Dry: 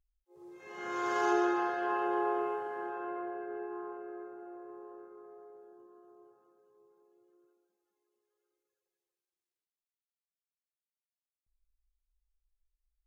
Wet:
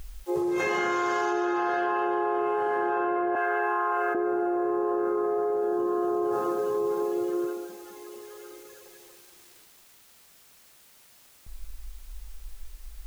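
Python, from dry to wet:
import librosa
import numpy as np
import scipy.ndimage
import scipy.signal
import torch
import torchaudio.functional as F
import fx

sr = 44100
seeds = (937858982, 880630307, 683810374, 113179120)

y = fx.highpass(x, sr, hz=990.0, slope=12, at=(3.35, 4.15))
y = fx.env_flatten(y, sr, amount_pct=100)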